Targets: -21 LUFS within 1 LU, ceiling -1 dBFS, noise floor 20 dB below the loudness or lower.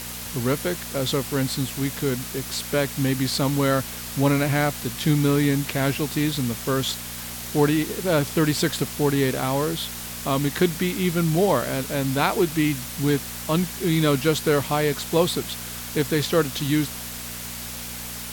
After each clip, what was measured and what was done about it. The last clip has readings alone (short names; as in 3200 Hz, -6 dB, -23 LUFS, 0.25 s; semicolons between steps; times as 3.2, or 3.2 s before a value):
hum 60 Hz; harmonics up to 240 Hz; hum level -39 dBFS; noise floor -34 dBFS; noise floor target -44 dBFS; loudness -23.5 LUFS; peak -4.5 dBFS; loudness target -21.0 LUFS
-> de-hum 60 Hz, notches 4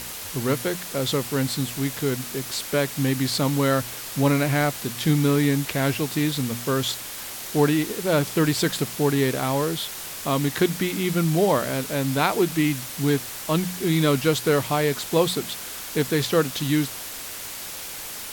hum none; noise floor -35 dBFS; noise floor target -44 dBFS
-> noise print and reduce 9 dB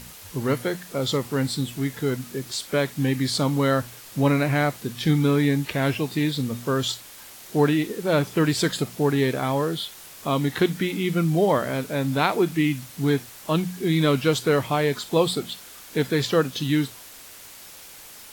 noise floor -44 dBFS; loudness -24.0 LUFS; peak -5.5 dBFS; loudness target -21.0 LUFS
-> gain +3 dB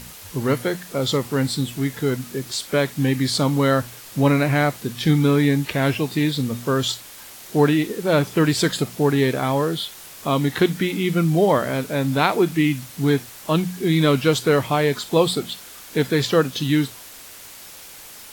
loudness -21.0 LUFS; peak -2.5 dBFS; noise floor -41 dBFS